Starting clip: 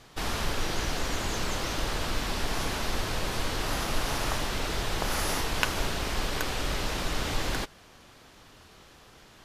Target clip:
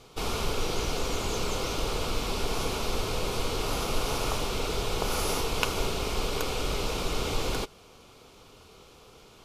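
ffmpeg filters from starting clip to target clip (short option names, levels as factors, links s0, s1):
-af "superequalizer=7b=2:11b=0.316"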